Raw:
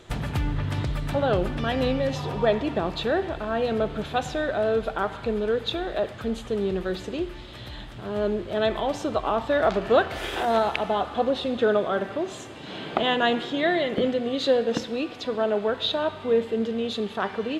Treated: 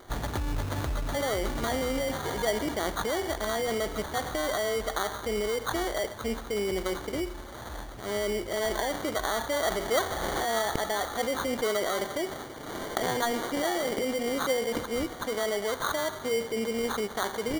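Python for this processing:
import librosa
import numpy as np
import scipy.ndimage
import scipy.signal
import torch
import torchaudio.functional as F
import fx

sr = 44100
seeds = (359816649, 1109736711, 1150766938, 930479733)

p1 = fx.peak_eq(x, sr, hz=150.0, db=-12.5, octaves=1.1)
p2 = fx.over_compress(p1, sr, threshold_db=-29.0, ratio=-0.5)
p3 = p1 + (p2 * 10.0 ** (-1.0 / 20.0))
p4 = fx.sample_hold(p3, sr, seeds[0], rate_hz=2600.0, jitter_pct=0)
y = p4 * 10.0 ** (-6.5 / 20.0)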